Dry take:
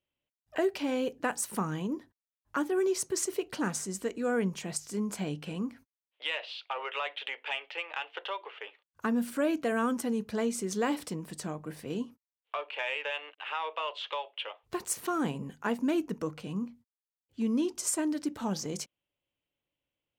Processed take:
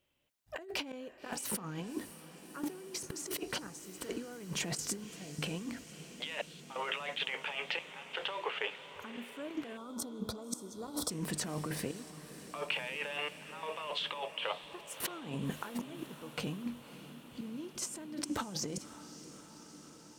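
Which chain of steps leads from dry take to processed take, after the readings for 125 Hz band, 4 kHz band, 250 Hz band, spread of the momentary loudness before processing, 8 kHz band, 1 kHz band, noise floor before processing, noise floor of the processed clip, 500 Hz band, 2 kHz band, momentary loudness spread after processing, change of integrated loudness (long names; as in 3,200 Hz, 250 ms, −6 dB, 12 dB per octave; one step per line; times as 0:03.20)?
−3.5 dB, +0.5 dB, −9.5 dB, 9 LU, −4.0 dB, −7.0 dB, below −85 dBFS, −55 dBFS, −9.5 dB, −3.5 dB, 12 LU, −6.5 dB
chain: gate pattern "xxxxxxxx...x" 131 BPM −24 dB
compressor whose output falls as the input rises −42 dBFS, ratio −1
feedback delay with all-pass diffusion 577 ms, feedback 73%, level −14 dB
gain on a spectral selection 0:09.77–0:11.11, 1,500–3,200 Hz −20 dB
level +1.5 dB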